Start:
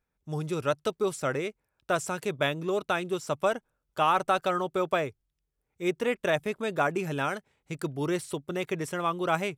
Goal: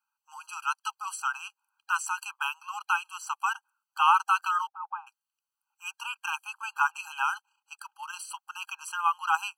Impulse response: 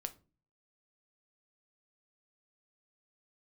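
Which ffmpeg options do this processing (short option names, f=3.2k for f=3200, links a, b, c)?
-filter_complex "[0:a]asettb=1/sr,asplit=3[a][b][c];[a]atrim=end=4.674[d];[b]atrim=start=4.67:end=5.07,asetpts=PTS-STARTPTS,afade=t=in:d=0.004:c=qsin,afade=t=out:st=0.396:d=0.004:c=qsin,lowpass=f=610:t=q:w=6.3[e];[c]atrim=start=5.066[f];[d][e]acrossfade=d=0.004:c1=hsin:c2=qsin[g];[g][f]acrossfade=d=0.004:c1=qsin:c2=hsin,asplit=3[h][i][j];[h]afade=t=out:st=7.35:d=0.02[k];[i]tremolo=f=29:d=0.519,afade=t=in:st=7.35:d=0.02,afade=t=out:st=8.19:d=0.02[l];[j]afade=t=in:st=8.19:d=0.02[m];[k][l][m]amix=inputs=3:normalize=0,afftfilt=real='re*eq(mod(floor(b*sr/1024/810),2),1)':imag='im*eq(mod(floor(b*sr/1024/810),2),1)':win_size=1024:overlap=0.75,volume=4.5dB"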